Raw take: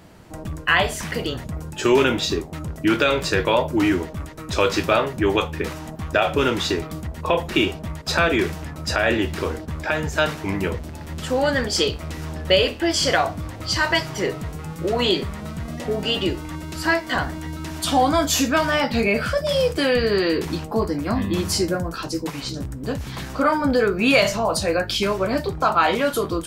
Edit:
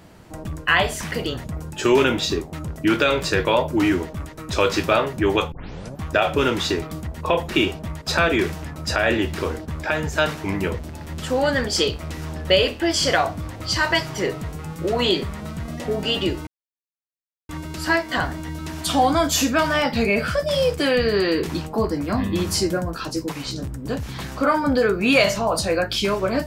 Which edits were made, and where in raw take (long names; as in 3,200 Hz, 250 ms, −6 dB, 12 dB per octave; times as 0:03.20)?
0:05.52: tape start 0.47 s
0:16.47: splice in silence 1.02 s